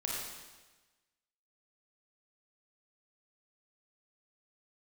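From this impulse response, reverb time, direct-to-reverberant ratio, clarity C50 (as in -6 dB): 1.2 s, -4.0 dB, -2.0 dB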